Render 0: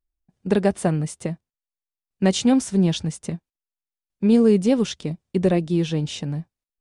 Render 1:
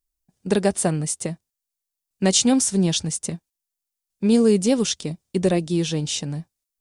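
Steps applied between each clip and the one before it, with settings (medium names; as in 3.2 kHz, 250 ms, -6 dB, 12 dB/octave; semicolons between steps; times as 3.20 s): tone controls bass -2 dB, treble +12 dB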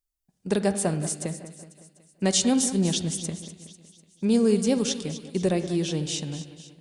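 two-band feedback delay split 2.7 kHz, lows 186 ms, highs 248 ms, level -12.5 dB; on a send at -12 dB: reverberation RT60 0.85 s, pre-delay 47 ms; on the sum: trim -4.5 dB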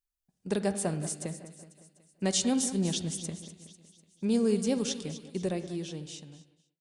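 fade out at the end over 1.71 s; trim -5.5 dB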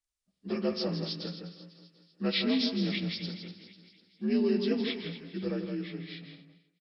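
frequency axis rescaled in octaves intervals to 83%; echo from a far wall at 28 m, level -7 dB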